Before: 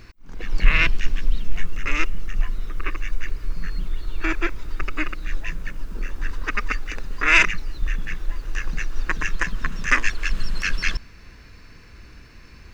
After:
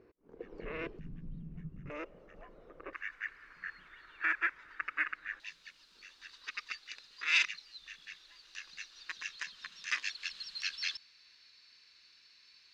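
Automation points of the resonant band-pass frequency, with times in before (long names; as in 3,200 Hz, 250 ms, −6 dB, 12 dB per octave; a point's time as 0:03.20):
resonant band-pass, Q 3.6
440 Hz
from 0:00.99 160 Hz
from 0:01.90 560 Hz
from 0:02.93 1,700 Hz
from 0:05.40 4,100 Hz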